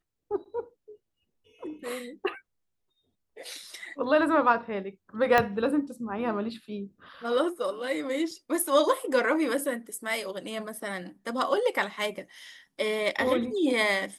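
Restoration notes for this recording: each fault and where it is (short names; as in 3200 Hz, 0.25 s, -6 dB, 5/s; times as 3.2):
5.38 pop -9 dBFS
8.31 gap 3.2 ms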